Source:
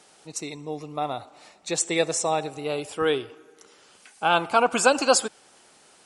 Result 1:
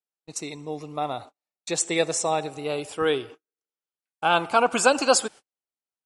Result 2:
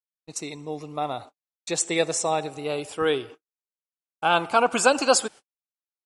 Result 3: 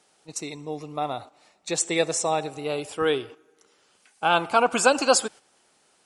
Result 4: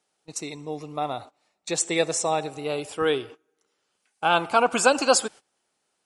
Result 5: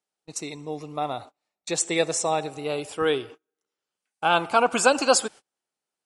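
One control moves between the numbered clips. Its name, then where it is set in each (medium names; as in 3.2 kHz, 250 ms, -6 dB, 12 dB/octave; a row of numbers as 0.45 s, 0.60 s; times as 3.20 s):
gate, range: -46 dB, -60 dB, -8 dB, -20 dB, -33 dB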